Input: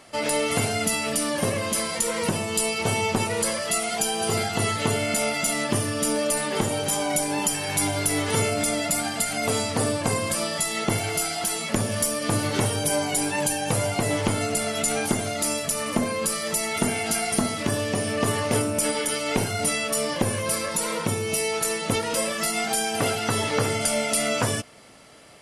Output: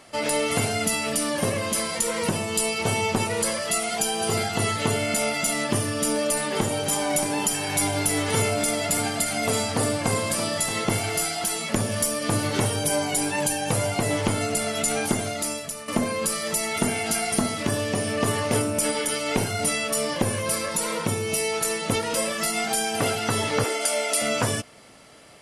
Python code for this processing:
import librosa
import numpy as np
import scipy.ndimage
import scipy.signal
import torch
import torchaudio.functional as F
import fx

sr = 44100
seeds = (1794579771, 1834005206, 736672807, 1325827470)

y = fx.echo_single(x, sr, ms=626, db=-10.0, at=(6.26, 11.31))
y = fx.steep_highpass(y, sr, hz=290.0, slope=36, at=(23.64, 24.22))
y = fx.edit(y, sr, fx.fade_out_to(start_s=15.22, length_s=0.66, floor_db=-12.0), tone=tone)